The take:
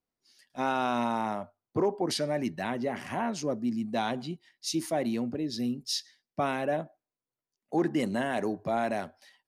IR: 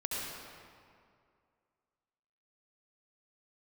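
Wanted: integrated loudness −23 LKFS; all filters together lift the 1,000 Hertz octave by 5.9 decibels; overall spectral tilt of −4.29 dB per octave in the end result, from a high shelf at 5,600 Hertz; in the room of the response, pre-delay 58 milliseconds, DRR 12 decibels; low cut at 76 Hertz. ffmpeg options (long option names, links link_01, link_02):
-filter_complex "[0:a]highpass=76,equalizer=frequency=1000:width_type=o:gain=8,highshelf=frequency=5600:gain=4,asplit=2[link_01][link_02];[1:a]atrim=start_sample=2205,adelay=58[link_03];[link_02][link_03]afir=irnorm=-1:irlink=0,volume=-16.5dB[link_04];[link_01][link_04]amix=inputs=2:normalize=0,volume=5.5dB"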